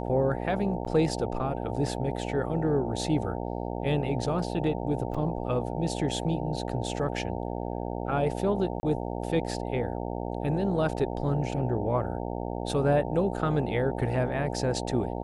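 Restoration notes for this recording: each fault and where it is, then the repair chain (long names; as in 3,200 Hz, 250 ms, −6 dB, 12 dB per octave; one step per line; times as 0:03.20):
mains buzz 60 Hz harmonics 15 −33 dBFS
0:00.85–0:00.86: drop-out 7.9 ms
0:05.14–0:05.15: drop-out 5.4 ms
0:08.80–0:08.83: drop-out 30 ms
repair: hum removal 60 Hz, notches 15
repair the gap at 0:00.85, 7.9 ms
repair the gap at 0:05.14, 5.4 ms
repair the gap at 0:08.80, 30 ms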